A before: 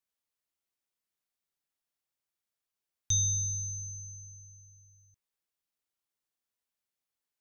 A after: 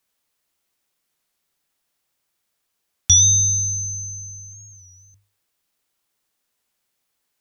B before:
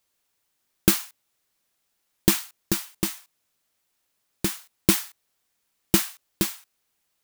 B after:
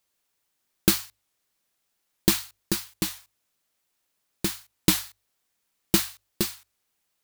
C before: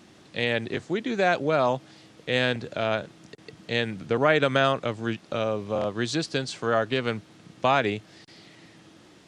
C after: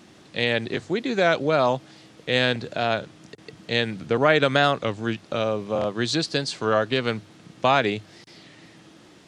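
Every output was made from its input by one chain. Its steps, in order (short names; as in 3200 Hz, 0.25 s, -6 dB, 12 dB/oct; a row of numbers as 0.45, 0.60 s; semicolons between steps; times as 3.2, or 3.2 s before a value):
notches 50/100 Hz; dynamic EQ 4200 Hz, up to +5 dB, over -47 dBFS, Q 2.9; record warp 33 1/3 rpm, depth 100 cents; normalise peaks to -3 dBFS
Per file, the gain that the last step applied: +14.5, -1.5, +2.5 dB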